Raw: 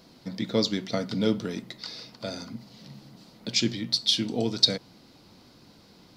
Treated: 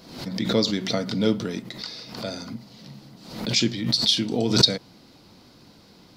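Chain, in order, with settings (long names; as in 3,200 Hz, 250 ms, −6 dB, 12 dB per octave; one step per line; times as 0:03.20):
background raised ahead of every attack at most 79 dB per second
level +2.5 dB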